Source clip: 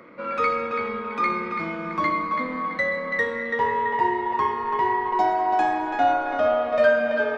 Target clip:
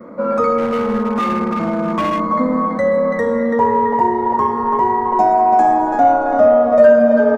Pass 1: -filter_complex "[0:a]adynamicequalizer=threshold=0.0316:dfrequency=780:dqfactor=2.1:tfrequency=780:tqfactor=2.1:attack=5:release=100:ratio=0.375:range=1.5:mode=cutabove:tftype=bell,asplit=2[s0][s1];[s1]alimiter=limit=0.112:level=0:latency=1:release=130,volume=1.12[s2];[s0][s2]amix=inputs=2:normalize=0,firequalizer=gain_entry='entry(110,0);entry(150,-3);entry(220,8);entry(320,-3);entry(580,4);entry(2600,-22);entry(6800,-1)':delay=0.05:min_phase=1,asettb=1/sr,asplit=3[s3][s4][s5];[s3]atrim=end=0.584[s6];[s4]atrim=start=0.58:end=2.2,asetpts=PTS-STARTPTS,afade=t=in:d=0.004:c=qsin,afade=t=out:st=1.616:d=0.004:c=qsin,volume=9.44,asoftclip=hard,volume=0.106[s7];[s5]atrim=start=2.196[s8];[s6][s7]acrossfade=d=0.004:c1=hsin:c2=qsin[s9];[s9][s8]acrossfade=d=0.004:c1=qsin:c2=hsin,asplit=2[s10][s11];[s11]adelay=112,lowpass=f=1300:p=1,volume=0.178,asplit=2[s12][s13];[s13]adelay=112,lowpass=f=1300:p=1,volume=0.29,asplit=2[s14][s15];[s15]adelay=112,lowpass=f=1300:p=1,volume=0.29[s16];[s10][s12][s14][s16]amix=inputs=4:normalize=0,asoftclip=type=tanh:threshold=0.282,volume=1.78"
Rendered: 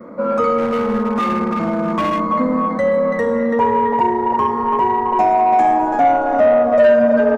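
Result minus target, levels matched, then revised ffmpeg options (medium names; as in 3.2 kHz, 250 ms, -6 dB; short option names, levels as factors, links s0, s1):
saturation: distortion +13 dB
-filter_complex "[0:a]adynamicequalizer=threshold=0.0316:dfrequency=780:dqfactor=2.1:tfrequency=780:tqfactor=2.1:attack=5:release=100:ratio=0.375:range=1.5:mode=cutabove:tftype=bell,asplit=2[s0][s1];[s1]alimiter=limit=0.112:level=0:latency=1:release=130,volume=1.12[s2];[s0][s2]amix=inputs=2:normalize=0,firequalizer=gain_entry='entry(110,0);entry(150,-3);entry(220,8);entry(320,-3);entry(580,4);entry(2600,-22);entry(6800,-1)':delay=0.05:min_phase=1,asettb=1/sr,asplit=3[s3][s4][s5];[s3]atrim=end=0.584[s6];[s4]atrim=start=0.58:end=2.2,asetpts=PTS-STARTPTS,afade=t=in:d=0.004:c=qsin,afade=t=out:st=1.616:d=0.004:c=qsin,volume=9.44,asoftclip=hard,volume=0.106[s7];[s5]atrim=start=2.196[s8];[s6][s7]acrossfade=d=0.004:c1=hsin:c2=qsin[s9];[s9][s8]acrossfade=d=0.004:c1=qsin:c2=hsin,asplit=2[s10][s11];[s11]adelay=112,lowpass=f=1300:p=1,volume=0.178,asplit=2[s12][s13];[s13]adelay=112,lowpass=f=1300:p=1,volume=0.29,asplit=2[s14][s15];[s15]adelay=112,lowpass=f=1300:p=1,volume=0.29[s16];[s10][s12][s14][s16]amix=inputs=4:normalize=0,asoftclip=type=tanh:threshold=0.708,volume=1.78"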